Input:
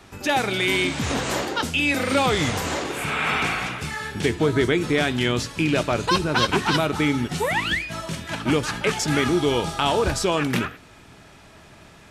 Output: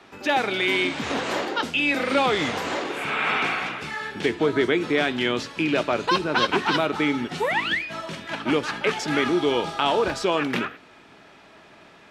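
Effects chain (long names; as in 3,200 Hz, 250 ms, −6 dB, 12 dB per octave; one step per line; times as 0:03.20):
three-way crossover with the lows and the highs turned down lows −16 dB, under 200 Hz, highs −13 dB, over 4,800 Hz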